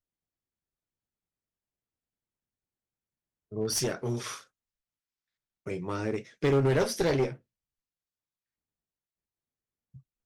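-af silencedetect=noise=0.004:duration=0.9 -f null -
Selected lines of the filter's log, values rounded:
silence_start: 0.00
silence_end: 3.52 | silence_duration: 3.52
silence_start: 4.44
silence_end: 5.67 | silence_duration: 1.23
silence_start: 7.37
silence_end: 9.95 | silence_duration: 2.58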